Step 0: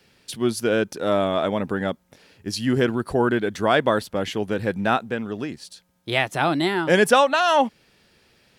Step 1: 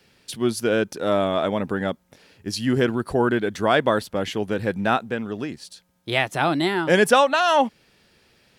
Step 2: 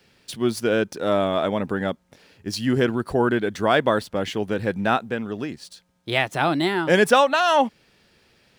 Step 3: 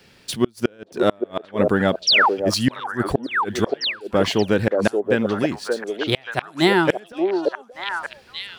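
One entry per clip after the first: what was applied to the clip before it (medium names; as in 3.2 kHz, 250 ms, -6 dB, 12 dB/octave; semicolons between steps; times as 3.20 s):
no audible change
median filter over 3 samples
inverted gate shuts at -11 dBFS, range -34 dB; painted sound fall, 2.07–2.29 s, 730–6100 Hz -21 dBFS; repeats whose band climbs or falls 579 ms, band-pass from 480 Hz, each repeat 1.4 oct, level -0.5 dB; trim +6.5 dB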